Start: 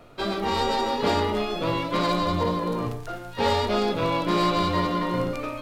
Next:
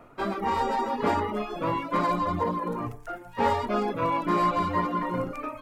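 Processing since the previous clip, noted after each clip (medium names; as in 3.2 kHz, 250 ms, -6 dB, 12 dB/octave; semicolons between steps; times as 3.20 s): reverb removal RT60 0.91 s; graphic EQ 250/1000/2000/4000 Hz +5/+7/+4/-10 dB; trim -4.5 dB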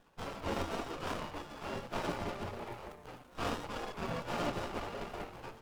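de-hum 148.8 Hz, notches 32; spectral gate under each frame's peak -15 dB weak; sliding maximum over 17 samples; trim +1.5 dB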